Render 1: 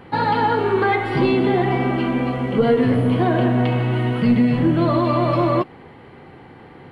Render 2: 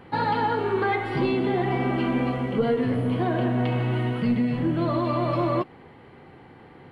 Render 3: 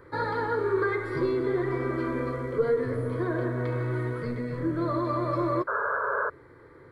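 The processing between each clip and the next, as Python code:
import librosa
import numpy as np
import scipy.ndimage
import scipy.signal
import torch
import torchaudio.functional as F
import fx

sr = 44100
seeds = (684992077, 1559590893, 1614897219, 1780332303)

y1 = fx.rider(x, sr, range_db=10, speed_s=0.5)
y1 = y1 * 10.0 ** (-6.0 / 20.0)
y2 = fx.spec_paint(y1, sr, seeds[0], shape='noise', start_s=5.67, length_s=0.63, low_hz=400.0, high_hz=1700.0, level_db=-26.0)
y2 = fx.fixed_phaser(y2, sr, hz=770.0, stages=6)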